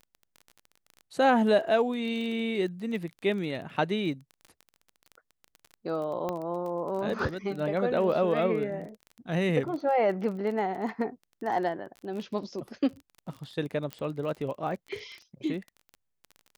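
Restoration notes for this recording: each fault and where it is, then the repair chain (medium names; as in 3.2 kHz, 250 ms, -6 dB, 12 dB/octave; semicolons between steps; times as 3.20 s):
crackle 22 per s -36 dBFS
6.29 s: pop -19 dBFS
13.93 s: pop -20 dBFS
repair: de-click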